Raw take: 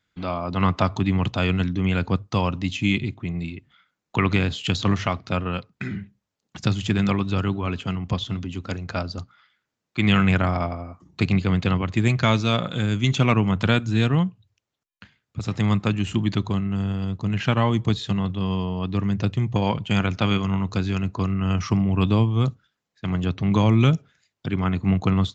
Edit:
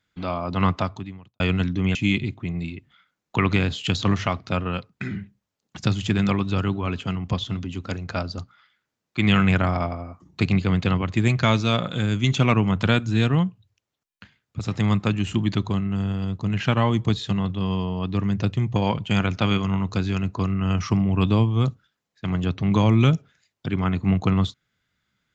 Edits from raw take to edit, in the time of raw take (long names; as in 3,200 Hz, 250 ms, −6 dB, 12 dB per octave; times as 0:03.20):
0:00.68–0:01.40: fade out quadratic
0:01.95–0:02.75: remove